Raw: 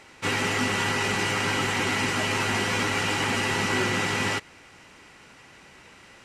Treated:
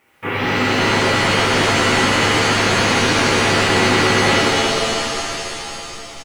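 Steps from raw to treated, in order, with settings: CVSD coder 16 kbps; bass shelf 82 Hz -5.5 dB; in parallel at -9 dB: word length cut 8-bit, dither triangular; on the sum: gate -41 dBFS, range -14 dB; on a send: frequency-shifting echo 455 ms, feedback 46%, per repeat -76 Hz, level -15 dB; on the sum: pitch-shifted reverb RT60 3.1 s, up +7 st, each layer -2 dB, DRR -6.5 dB

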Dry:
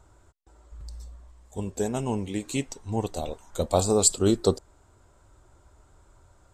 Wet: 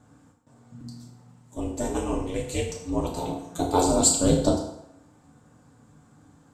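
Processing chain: ring modulator 180 Hz; FDN reverb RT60 0.81 s, low-frequency decay 0.8×, high-frequency decay 0.8×, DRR -2 dB

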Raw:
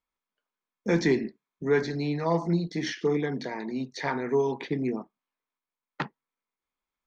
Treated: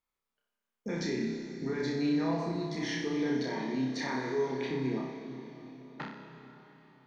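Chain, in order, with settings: peak limiter -25 dBFS, peak gain reduction 12 dB; flutter echo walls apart 5.3 m, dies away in 0.61 s; on a send at -7 dB: reverberation RT60 4.2 s, pre-delay 115 ms; on the sum: trim -3 dB

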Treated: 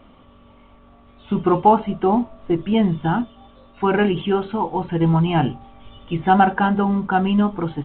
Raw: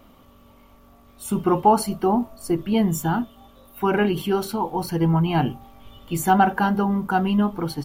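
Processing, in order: trim +2.5 dB; µ-law 64 kbps 8 kHz

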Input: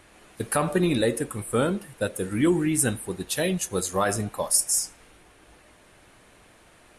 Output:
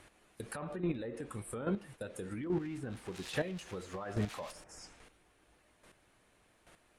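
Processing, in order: 2.43–4.64 s: zero-crossing glitches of -17.5 dBFS; gate -45 dBFS, range -8 dB; low-pass that closes with the level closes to 1.4 kHz, closed at -17 dBFS; peak limiter -22.5 dBFS, peak gain reduction 11.5 dB; compression 2.5:1, threshold -34 dBFS, peak gain reduction 6 dB; square tremolo 1.2 Hz, depth 65%, duty 10%; trim +3 dB

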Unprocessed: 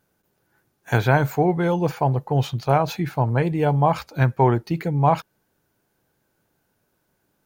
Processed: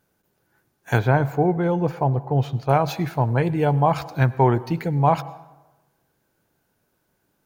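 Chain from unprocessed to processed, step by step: 0.99–2.69 s: treble shelf 2.2 kHz -11 dB; plate-style reverb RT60 1.1 s, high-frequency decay 0.6×, pre-delay 85 ms, DRR 18.5 dB

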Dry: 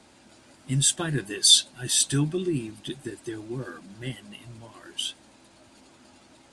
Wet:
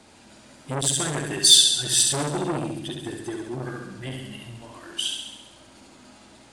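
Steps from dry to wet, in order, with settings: flutter echo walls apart 11.6 m, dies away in 0.98 s; transformer saturation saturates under 3.7 kHz; trim +2.5 dB

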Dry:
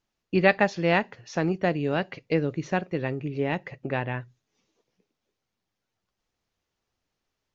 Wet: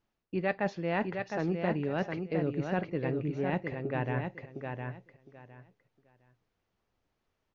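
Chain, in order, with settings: low-pass 1.9 kHz 6 dB/octave; reverse; compression 4:1, threshold -31 dBFS, peak gain reduction 13.5 dB; reverse; feedback delay 710 ms, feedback 20%, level -5.5 dB; trim +2 dB

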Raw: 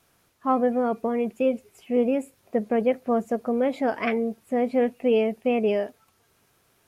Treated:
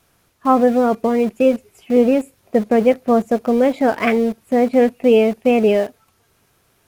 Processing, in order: bass shelf 98 Hz +6 dB; in parallel at -4.5 dB: small samples zeroed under -31.5 dBFS; on the sum: trim +4 dB

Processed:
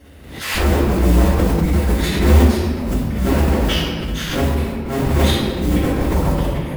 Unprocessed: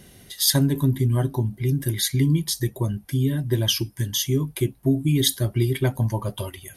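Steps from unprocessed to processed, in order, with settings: cycle switcher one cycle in 2, inverted; high-pass 68 Hz 12 dB/octave; tone controls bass +4 dB, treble -11 dB; slow attack 122 ms; in parallel at +0.5 dB: level held to a coarse grid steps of 14 dB; on the sum: modulation noise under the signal 16 dB; reverberation RT60 1.9 s, pre-delay 3 ms, DRR -18.5 dB; swell ahead of each attack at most 61 dB/s; trim -15.5 dB

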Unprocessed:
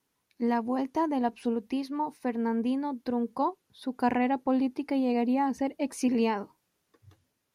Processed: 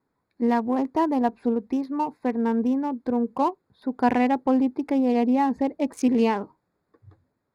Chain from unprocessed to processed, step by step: local Wiener filter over 15 samples; trim +5.5 dB

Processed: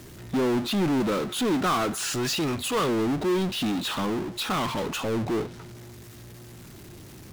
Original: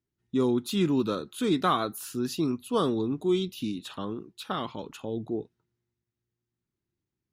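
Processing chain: 1.93–2.89 s: graphic EQ 250/2000/8000 Hz -9/+8/+11 dB; low-pass that closes with the level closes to 2.6 kHz, closed at -25.5 dBFS; power-law waveshaper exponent 0.35; trim -5.5 dB

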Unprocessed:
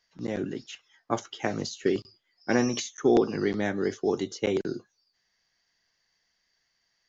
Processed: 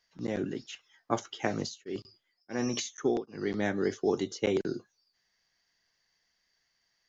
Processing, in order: 1.61–3.62 s: tremolo of two beating tones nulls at 1.9 Hz -> 1 Hz; trim -1.5 dB

